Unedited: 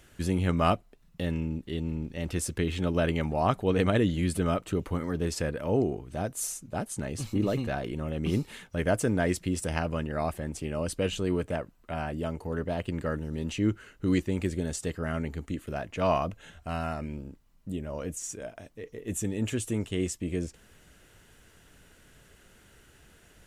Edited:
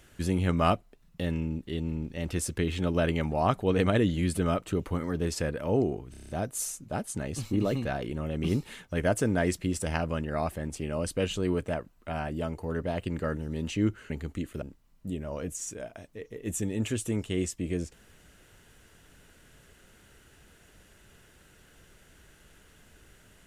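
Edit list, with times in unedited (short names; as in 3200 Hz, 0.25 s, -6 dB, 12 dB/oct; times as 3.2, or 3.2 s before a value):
6.11 stutter 0.03 s, 7 plays
13.92–15.23 cut
15.75–17.24 cut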